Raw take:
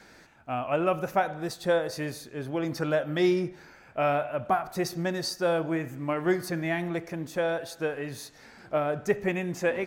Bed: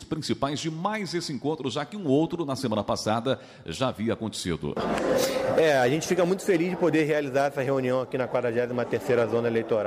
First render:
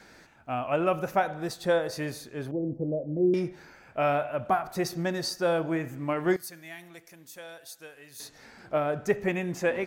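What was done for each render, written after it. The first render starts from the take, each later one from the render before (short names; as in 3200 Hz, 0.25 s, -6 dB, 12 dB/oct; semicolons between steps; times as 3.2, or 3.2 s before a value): 2.51–3.34 inverse Chebyshev low-pass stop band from 1400 Hz, stop band 50 dB; 6.36–8.2 pre-emphasis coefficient 0.9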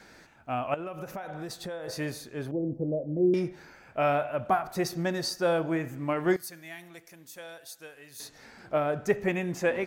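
0.74–1.88 compressor 16:1, threshold -33 dBFS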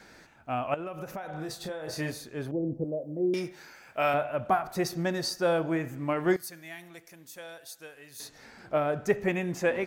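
1.3–2.12 doubler 32 ms -7 dB; 2.84–4.14 tilt +2.5 dB/oct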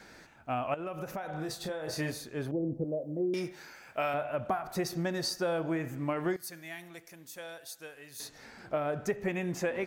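compressor 5:1, threshold -28 dBFS, peak gain reduction 9 dB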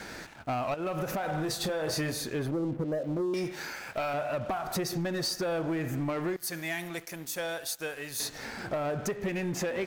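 compressor 5:1, threshold -38 dBFS, peak gain reduction 11.5 dB; sample leveller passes 3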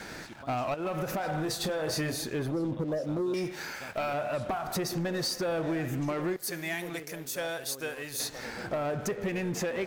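add bed -22 dB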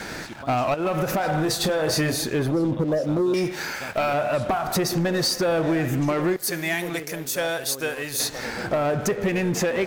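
gain +8.5 dB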